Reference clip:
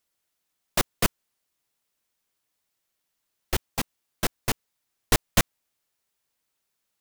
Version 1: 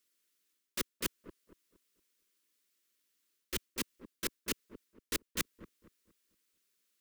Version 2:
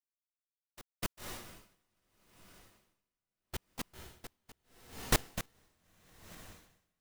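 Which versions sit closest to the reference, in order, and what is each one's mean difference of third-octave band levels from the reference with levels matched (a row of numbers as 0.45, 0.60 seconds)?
1, 2; 5.5, 10.0 decibels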